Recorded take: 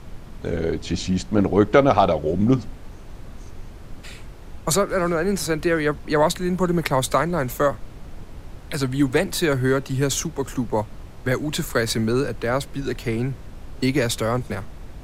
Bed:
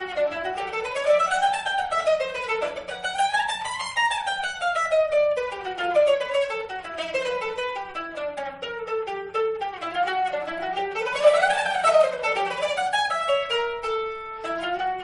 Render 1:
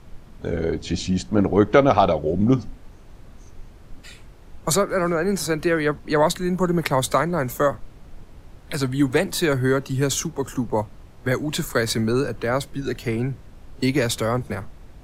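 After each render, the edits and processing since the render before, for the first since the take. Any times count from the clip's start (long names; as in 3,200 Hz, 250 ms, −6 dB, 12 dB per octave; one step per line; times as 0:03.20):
noise reduction from a noise print 6 dB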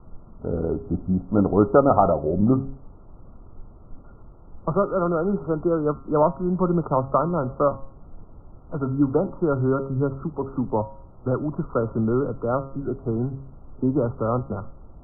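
Chebyshev low-pass filter 1,400 Hz, order 10
hum removal 135.7 Hz, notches 11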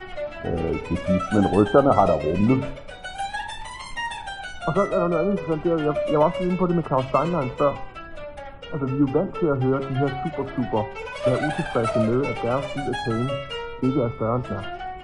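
mix in bed −7 dB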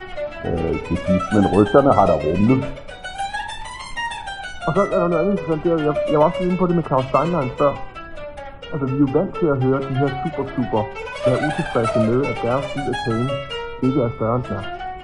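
level +3.5 dB
brickwall limiter −1 dBFS, peak gain reduction 1 dB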